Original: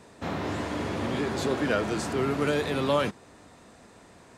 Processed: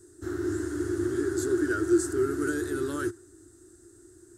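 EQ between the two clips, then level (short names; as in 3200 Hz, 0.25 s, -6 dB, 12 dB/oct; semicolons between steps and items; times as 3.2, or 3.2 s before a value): notch 2400 Hz, Q 10; dynamic EQ 1500 Hz, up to +8 dB, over -43 dBFS, Q 0.74; EQ curve 110 Hz 0 dB, 200 Hz -28 dB, 350 Hz +13 dB, 500 Hz -22 dB, 1000 Hz -25 dB, 1500 Hz -6 dB, 2200 Hz -24 dB, 3100 Hz -21 dB, 8000 Hz +7 dB, 14000 Hz +4 dB; 0.0 dB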